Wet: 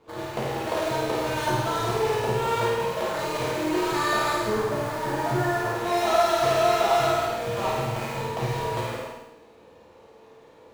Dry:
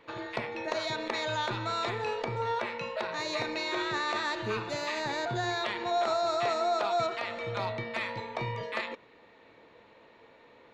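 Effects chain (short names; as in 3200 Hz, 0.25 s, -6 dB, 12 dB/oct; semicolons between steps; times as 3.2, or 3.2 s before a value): median filter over 25 samples; 4.43–5.75 elliptic low-pass 1900 Hz; in parallel at -8.5 dB: bit-crush 6-bit; on the sum: flutter echo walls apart 8.9 m, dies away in 0.82 s; non-linear reverb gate 0.33 s falling, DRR -5 dB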